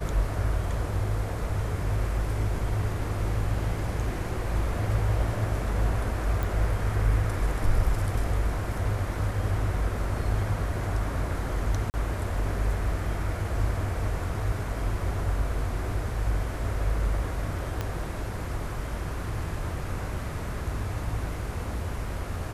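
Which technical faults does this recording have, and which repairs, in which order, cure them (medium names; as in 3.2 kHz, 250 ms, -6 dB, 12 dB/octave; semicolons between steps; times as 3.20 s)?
6.43 s: pop
11.90–11.94 s: dropout 39 ms
17.81 s: pop -16 dBFS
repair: de-click; interpolate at 11.90 s, 39 ms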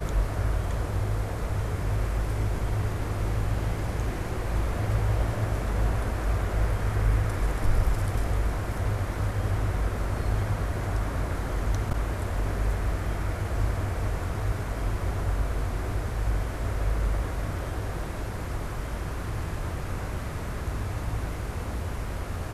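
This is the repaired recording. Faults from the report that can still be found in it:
17.81 s: pop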